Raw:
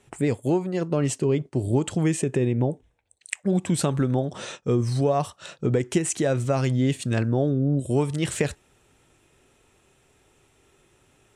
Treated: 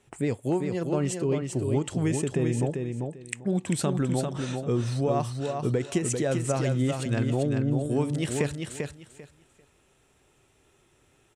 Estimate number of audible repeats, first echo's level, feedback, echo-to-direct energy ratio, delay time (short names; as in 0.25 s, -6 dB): 3, -5.0 dB, 20%, -5.0 dB, 0.394 s